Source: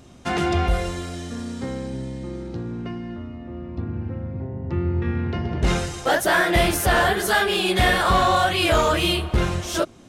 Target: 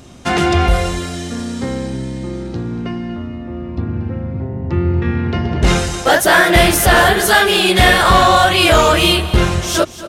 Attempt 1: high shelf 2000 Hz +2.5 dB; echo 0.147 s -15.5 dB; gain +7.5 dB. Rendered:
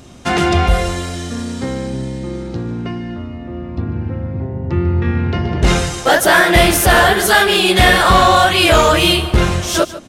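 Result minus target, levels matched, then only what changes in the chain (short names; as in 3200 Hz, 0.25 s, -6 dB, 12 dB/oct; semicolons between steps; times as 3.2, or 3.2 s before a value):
echo 88 ms early
change: echo 0.235 s -15.5 dB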